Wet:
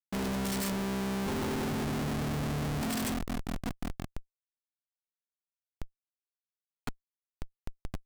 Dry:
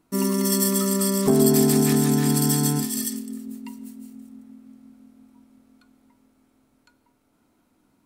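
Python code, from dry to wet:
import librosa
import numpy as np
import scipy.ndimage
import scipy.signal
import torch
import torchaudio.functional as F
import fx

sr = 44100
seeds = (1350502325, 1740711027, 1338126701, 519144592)

y = np.minimum(x, 2.0 * 10.0 ** (-17.0 / 20.0) - x)
y = fx.recorder_agc(y, sr, target_db=-12.5, rise_db_per_s=6.5, max_gain_db=30)
y = fx.lowpass(y, sr, hz=1300.0, slope=12, at=(0.72, 2.81))
y = fx.schmitt(y, sr, flips_db=-25.5)
y = y * 10.0 ** (-6.5 / 20.0)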